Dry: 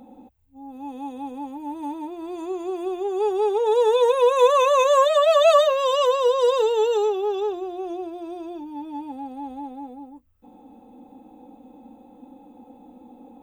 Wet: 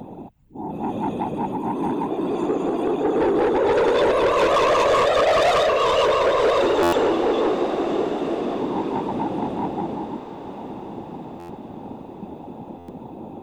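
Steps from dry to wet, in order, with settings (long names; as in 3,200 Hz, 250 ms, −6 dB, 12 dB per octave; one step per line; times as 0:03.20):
high-shelf EQ 6,800 Hz −10 dB
in parallel at −1.5 dB: downward compressor, threshold −30 dBFS, peak gain reduction 17.5 dB
on the sum: random phases in short frames
soft clipping −19.5 dBFS, distortion −7 dB
on a send: feedback delay with all-pass diffusion 1,176 ms, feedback 45%, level −11 dB
on the sum: buffer that repeats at 0:06.82/0:11.39/0:12.78, samples 512, times 8
level +4.5 dB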